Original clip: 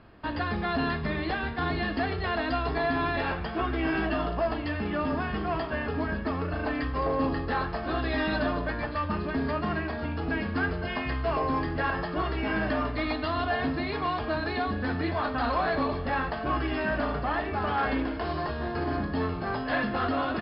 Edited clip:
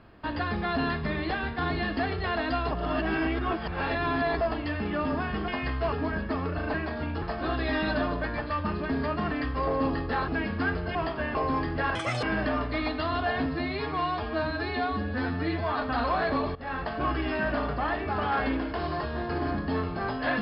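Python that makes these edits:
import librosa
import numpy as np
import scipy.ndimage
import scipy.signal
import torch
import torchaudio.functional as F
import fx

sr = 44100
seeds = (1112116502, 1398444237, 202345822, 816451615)

y = fx.edit(x, sr, fx.reverse_span(start_s=2.71, length_s=1.7),
    fx.swap(start_s=5.48, length_s=0.4, other_s=10.91, other_length_s=0.44),
    fx.swap(start_s=6.7, length_s=0.97, other_s=9.76, other_length_s=0.48),
    fx.speed_span(start_s=11.95, length_s=0.52, speed=1.87),
    fx.stretch_span(start_s=13.7, length_s=1.57, factor=1.5),
    fx.fade_in_from(start_s=16.01, length_s=0.33, floor_db=-17.5), tone=tone)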